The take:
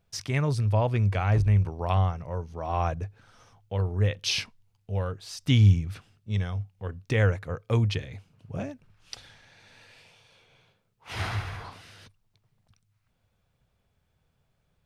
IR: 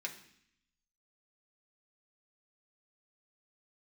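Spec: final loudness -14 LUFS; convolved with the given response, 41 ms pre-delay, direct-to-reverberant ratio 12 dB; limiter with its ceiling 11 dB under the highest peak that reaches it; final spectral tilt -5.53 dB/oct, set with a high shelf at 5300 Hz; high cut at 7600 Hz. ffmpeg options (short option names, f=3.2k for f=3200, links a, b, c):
-filter_complex "[0:a]lowpass=7.6k,highshelf=f=5.3k:g=6,alimiter=limit=-20dB:level=0:latency=1,asplit=2[a][b];[1:a]atrim=start_sample=2205,adelay=41[c];[b][c]afir=irnorm=-1:irlink=0,volume=-12.5dB[d];[a][d]amix=inputs=2:normalize=0,volume=17dB"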